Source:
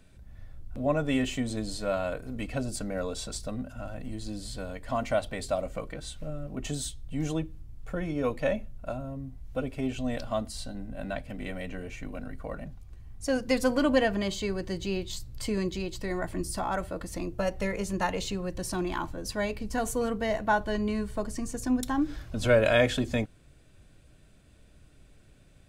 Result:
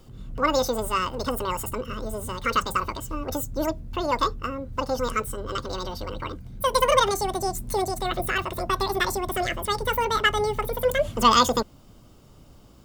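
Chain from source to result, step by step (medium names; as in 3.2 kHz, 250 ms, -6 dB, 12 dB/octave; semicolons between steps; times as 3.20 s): speed mistake 7.5 ips tape played at 15 ips; trim +5 dB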